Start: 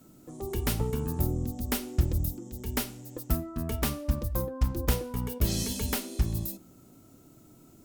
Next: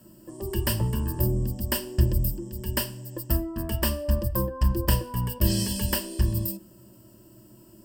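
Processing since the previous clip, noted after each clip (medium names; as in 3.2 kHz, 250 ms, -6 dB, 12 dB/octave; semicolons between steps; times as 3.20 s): rippled EQ curve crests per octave 1.3, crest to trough 15 dB; trim +1 dB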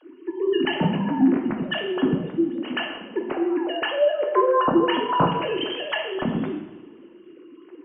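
formants replaced by sine waves; two-slope reverb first 0.93 s, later 2.6 s, from -20 dB, DRR 1.5 dB; trim +1 dB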